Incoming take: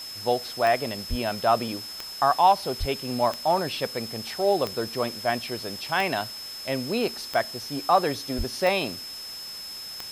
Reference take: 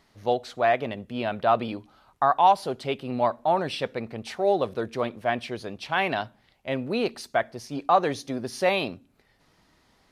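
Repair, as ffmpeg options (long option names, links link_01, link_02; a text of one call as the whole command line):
ffmpeg -i in.wav -filter_complex "[0:a]adeclick=threshold=4,bandreject=frequency=5200:width=30,asplit=3[link_01][link_02][link_03];[link_01]afade=type=out:start_time=1.09:duration=0.02[link_04];[link_02]highpass=frequency=140:width=0.5412,highpass=frequency=140:width=1.3066,afade=type=in:start_time=1.09:duration=0.02,afade=type=out:start_time=1.21:duration=0.02[link_05];[link_03]afade=type=in:start_time=1.21:duration=0.02[link_06];[link_04][link_05][link_06]amix=inputs=3:normalize=0,asplit=3[link_07][link_08][link_09];[link_07]afade=type=out:start_time=2.79:duration=0.02[link_10];[link_08]highpass=frequency=140:width=0.5412,highpass=frequency=140:width=1.3066,afade=type=in:start_time=2.79:duration=0.02,afade=type=out:start_time=2.91:duration=0.02[link_11];[link_09]afade=type=in:start_time=2.91:duration=0.02[link_12];[link_10][link_11][link_12]amix=inputs=3:normalize=0,asplit=3[link_13][link_14][link_15];[link_13]afade=type=out:start_time=8.37:duration=0.02[link_16];[link_14]highpass=frequency=140:width=0.5412,highpass=frequency=140:width=1.3066,afade=type=in:start_time=8.37:duration=0.02,afade=type=out:start_time=8.49:duration=0.02[link_17];[link_15]afade=type=in:start_time=8.49:duration=0.02[link_18];[link_16][link_17][link_18]amix=inputs=3:normalize=0,afwtdn=0.0071" out.wav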